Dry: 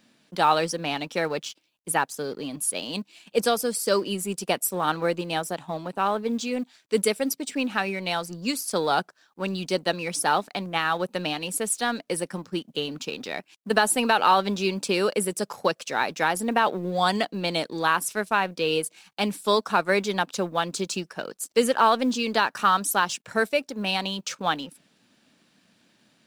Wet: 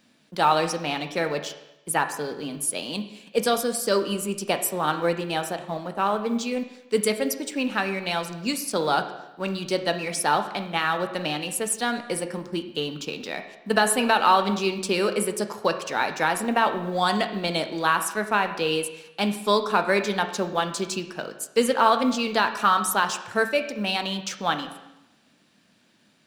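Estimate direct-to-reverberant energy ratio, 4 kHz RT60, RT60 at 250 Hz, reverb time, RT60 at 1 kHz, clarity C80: 7.0 dB, 0.90 s, 0.90 s, 0.90 s, 0.95 s, 12.0 dB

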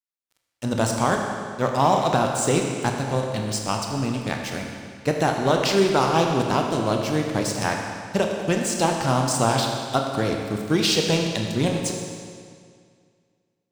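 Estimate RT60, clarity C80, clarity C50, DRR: 2.1 s, 4.0 dB, 3.0 dB, 1.5 dB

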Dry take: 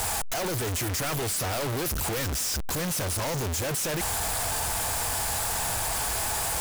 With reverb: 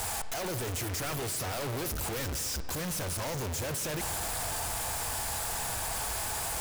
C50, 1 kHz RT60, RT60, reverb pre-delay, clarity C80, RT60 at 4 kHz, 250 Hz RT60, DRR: 10.5 dB, 2.5 s, 2.6 s, 27 ms, 11.5 dB, 1.5 s, 2.5 s, 10.0 dB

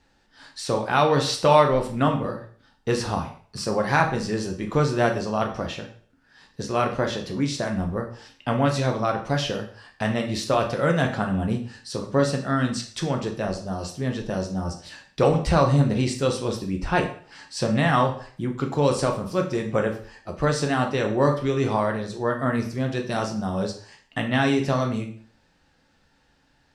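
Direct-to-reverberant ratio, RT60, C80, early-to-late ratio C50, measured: 2.5 dB, 0.50 s, 13.0 dB, 9.5 dB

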